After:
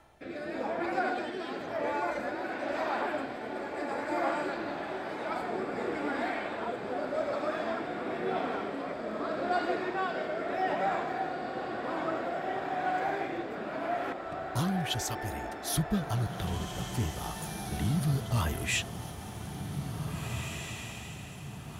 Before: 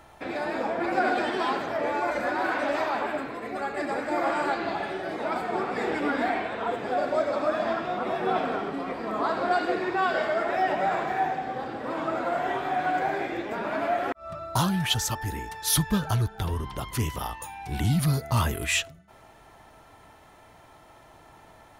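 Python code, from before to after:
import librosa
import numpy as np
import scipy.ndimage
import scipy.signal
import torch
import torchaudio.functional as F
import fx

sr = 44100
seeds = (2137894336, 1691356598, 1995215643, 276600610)

y = fx.rotary(x, sr, hz=0.9)
y = fx.echo_diffused(y, sr, ms=1926, feedback_pct=49, wet_db=-6)
y = F.gain(torch.from_numpy(y), -4.0).numpy()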